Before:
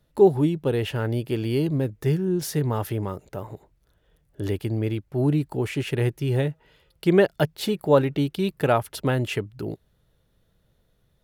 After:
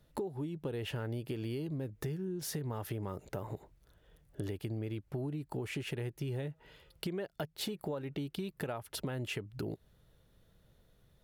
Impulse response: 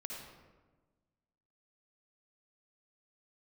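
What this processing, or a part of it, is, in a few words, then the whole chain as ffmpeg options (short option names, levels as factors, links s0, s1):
serial compression, peaks first: -af "acompressor=threshold=0.0316:ratio=6,acompressor=threshold=0.0141:ratio=2.5"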